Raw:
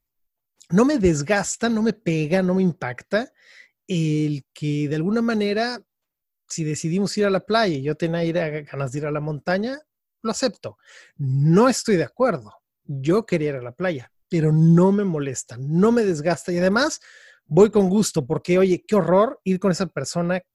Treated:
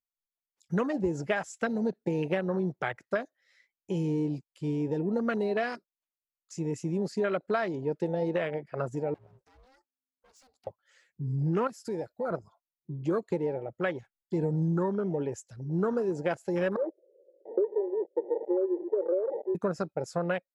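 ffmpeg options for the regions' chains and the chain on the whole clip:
-filter_complex "[0:a]asettb=1/sr,asplit=3[s0][s1][s2];[s0]atrim=end=9.144[s3];[s1]atrim=start=9.14:end=10.67,asetpts=PTS-STARTPTS,afade=t=in:d=0.004:c=qsin,afade=t=out:st=1.526:d=0.004:c=qsin,acompressor=threshold=0.0251:ratio=12:attack=3.2:release=140:knee=1:detection=peak,aeval=exprs='val(0)*sin(2*PI*260*n/s)':c=same,asoftclip=type=hard:threshold=0.0106[s4];[s2]atrim=start=10.666[s5];[s3][s4]acrossfade=d=0.004:c1=hsin:c2=qsin[s6];[s6][s5]acrossfade=d=0.004:c1=qsin:c2=hsin,asettb=1/sr,asplit=3[s7][s8][s9];[s7]atrim=end=11.674[s10];[s8]atrim=start=11.67:end=12.31,asetpts=PTS-STARTPTS,afade=t=in:d=0.004:c=qsin,afade=t=out:st=0.636:d=0.004:c=qsin,highshelf=f=8800:g=10.5,acompressor=threshold=0.0355:ratio=2.5:attack=3.2:release=140:knee=1:detection=peak[s11];[s9]atrim=start=12.306[s12];[s10][s11]acrossfade=d=0.004:c1=hsin:c2=qsin[s13];[s13][s12]acrossfade=d=0.004:c1=qsin:c2=hsin,asettb=1/sr,asplit=3[s14][s15][s16];[s14]atrim=end=16.764[s17];[s15]atrim=start=16.76:end=19.55,asetpts=PTS-STARTPTS,afade=t=in:d=0.004:c=qsin,afade=t=out:st=2.786:d=0.004:c=qsin,aeval=exprs='val(0)+0.5*0.1*sgn(val(0))':c=same,asuperpass=centerf=440:order=12:qfactor=1.8[s18];[s16]atrim=start=19.546[s19];[s17][s18]acrossfade=d=0.004:c1=hsin:c2=qsin[s20];[s20][s19]acrossfade=d=0.004:c1=qsin:c2=hsin,afwtdn=0.0398,lowshelf=f=270:g=-11.5,acompressor=threshold=0.0562:ratio=6"

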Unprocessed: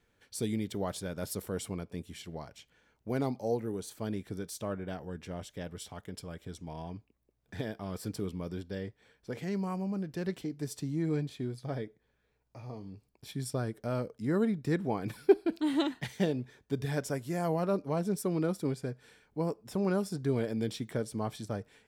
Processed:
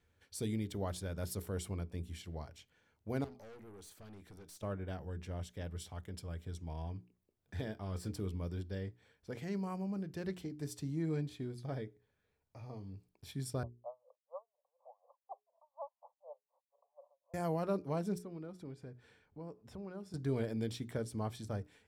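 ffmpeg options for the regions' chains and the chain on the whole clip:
-filter_complex "[0:a]asettb=1/sr,asplit=3[s0][s1][s2];[s0]atrim=end=3.244[s3];[s1]atrim=start=3.24:end=4.63,asetpts=PTS-STARTPTS,afade=t=in:d=0.004:c=qsin,afade=t=out:st=1.386:d=0.004:c=qsin,equalizer=f=93:w=0.48:g=-5.5,acompressor=threshold=0.00631:ratio=1.5:attack=3.2:release=140:knee=1:detection=peak,aeval=exprs='(tanh(200*val(0)+0.25)-tanh(0.25))/200':c=same[s4];[s2]atrim=start=4.626[s5];[s3][s4]acrossfade=d=0.004:c1=hsin:c2=qsin[s6];[s6][s5]acrossfade=d=0.004:c1=qsin:c2=hsin,asettb=1/sr,asplit=3[s7][s8][s9];[s7]atrim=end=7.644[s10];[s8]atrim=start=7.64:end=8.13,asetpts=PTS-STARTPTS,afade=t=in:d=0.004:c=qsin,afade=t=out:st=0.486:d=0.004:c=qsin,equalizer=f=12000:w=4.2:g=-11.5,asplit=2[s11][s12];[s12]adelay=23,volume=0.224[s13];[s11][s13]amix=inputs=2:normalize=0,atrim=end_sample=21609[s14];[s9]atrim=start=8.126[s15];[s10][s14]acrossfade=d=0.004:c1=hsin:c2=qsin[s16];[s16][s15]acrossfade=d=0.004:c1=qsin:c2=hsin,asettb=1/sr,asplit=3[s17][s18][s19];[s17]atrim=end=13.634[s20];[s18]atrim=start=13.63:end=17.34,asetpts=PTS-STARTPTS,afade=t=in:d=0.004:c=qsin,afade=t=out:st=3.706:d=0.004:c=qsin,asuperpass=centerf=770:order=20:qfactor=1.2,aeval=exprs='val(0)*pow(10,-36*(0.5-0.5*cos(2*PI*4.1*n/s))/20)':c=same[s21];[s19]atrim=start=17.336[s22];[s20][s21]acrossfade=d=0.004:c1=hsin:c2=qsin[s23];[s23][s22]acrossfade=d=0.004:c1=qsin:c2=hsin,asettb=1/sr,asplit=3[s24][s25][s26];[s24]atrim=end=18.184[s27];[s25]atrim=start=18.18:end=20.14,asetpts=PTS-STARTPTS,afade=t=in:d=0.004:c=qsin,afade=t=out:st=1.956:d=0.004:c=qsin,acompressor=threshold=0.00447:ratio=2:attack=3.2:release=140:knee=1:detection=peak,aemphasis=mode=reproduction:type=50kf[s28];[s26]atrim=start=20.136[s29];[s27][s28]acrossfade=d=0.004:c1=hsin:c2=qsin[s30];[s30][s29]acrossfade=d=0.004:c1=qsin:c2=hsin,equalizer=f=80:t=o:w=0.62:g=13.5,bandreject=f=60:t=h:w=6,bandreject=f=120:t=h:w=6,bandreject=f=180:t=h:w=6,bandreject=f=240:t=h:w=6,bandreject=f=300:t=h:w=6,bandreject=f=360:t=h:w=6,bandreject=f=420:t=h:w=6,volume=0.562"

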